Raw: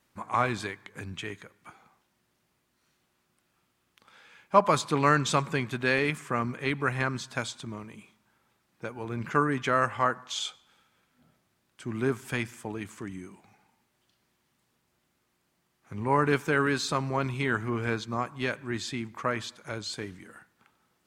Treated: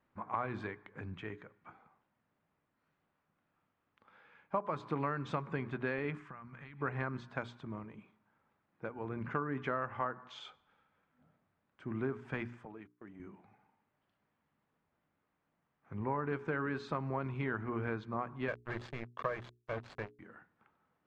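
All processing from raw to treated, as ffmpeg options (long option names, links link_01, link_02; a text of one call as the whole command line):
ffmpeg -i in.wav -filter_complex "[0:a]asettb=1/sr,asplit=3[link_01][link_02][link_03];[link_01]atrim=end=6.184[link_04];[link_02]atrim=start=6.18:end=6.81,asetpts=PTS-STARTPTS,afade=type=in:duration=0.004:curve=qsin,afade=type=out:start_time=0.626:duration=0.004:curve=qsin,equalizer=frequency=420:width=0.9:gain=-14.5,acompressor=threshold=-39dB:ratio=12:attack=3.2:release=140:knee=1:detection=peak[link_05];[link_03]atrim=start=6.806[link_06];[link_04][link_05]acrossfade=duration=0.004:curve1=hsin:curve2=qsin[link_07];[link_07][link_06]acrossfade=duration=0.004:curve1=qsin:curve2=hsin,asettb=1/sr,asplit=3[link_08][link_09][link_10];[link_08]atrim=end=12.654[link_11];[link_09]atrim=start=12.65:end=13.2,asetpts=PTS-STARTPTS,afade=type=in:duration=0.004:curve=qsin,afade=type=out:start_time=0.546:duration=0.004:curve=qsin,agate=range=-34dB:threshold=-40dB:ratio=16:release=100:detection=peak,highpass=frequency=250:poles=1,acompressor=threshold=-46dB:ratio=2:attack=3.2:release=140:knee=1:detection=peak[link_12];[link_10]atrim=start=13.196[link_13];[link_11][link_12]acrossfade=duration=0.004:curve1=hsin:curve2=qsin[link_14];[link_14][link_13]acrossfade=duration=0.004:curve1=qsin:curve2=hsin,asettb=1/sr,asplit=3[link_15][link_16][link_17];[link_15]atrim=end=18.484[link_18];[link_16]atrim=start=18.48:end=20.19,asetpts=PTS-STARTPTS,afade=type=in:duration=0.004:curve=qsin,afade=type=out:start_time=1.706:duration=0.004:curve=qsin,aecho=1:1:1.8:0.8,atrim=end_sample=75411,acrusher=bits=4:mix=0:aa=0.5[link_19];[link_17]atrim=start=20.186[link_20];[link_18][link_19]acrossfade=duration=0.004:curve1=hsin:curve2=qsin[link_21];[link_21][link_20]acrossfade=duration=0.004:curve1=qsin:curve2=hsin,lowpass=1700,bandreject=frequency=60:width_type=h:width=6,bandreject=frequency=120:width_type=h:width=6,bandreject=frequency=180:width_type=h:width=6,bandreject=frequency=240:width_type=h:width=6,bandreject=frequency=300:width_type=h:width=6,bandreject=frequency=360:width_type=h:width=6,bandreject=frequency=420:width_type=h:width=6,acompressor=threshold=-27dB:ratio=8,volume=-4dB" out.wav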